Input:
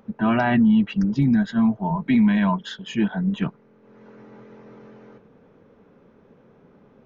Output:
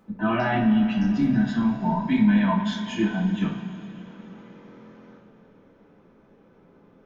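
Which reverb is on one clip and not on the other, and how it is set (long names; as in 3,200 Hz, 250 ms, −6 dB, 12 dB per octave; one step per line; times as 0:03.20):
coupled-rooms reverb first 0.37 s, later 3.9 s, from −18 dB, DRR −6 dB
level −8 dB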